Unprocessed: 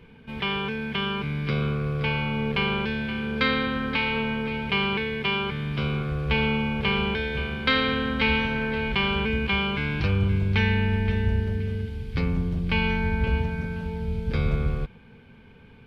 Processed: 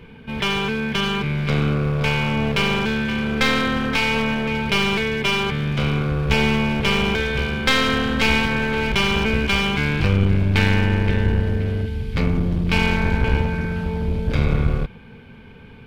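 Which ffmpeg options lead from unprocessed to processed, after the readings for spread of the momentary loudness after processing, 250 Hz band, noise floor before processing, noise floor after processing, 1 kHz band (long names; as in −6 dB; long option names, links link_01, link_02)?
5 LU, +5.5 dB, −50 dBFS, −42 dBFS, +5.0 dB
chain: -af "aeval=exprs='clip(val(0),-1,0.0376)':channel_layout=same,volume=7.5dB"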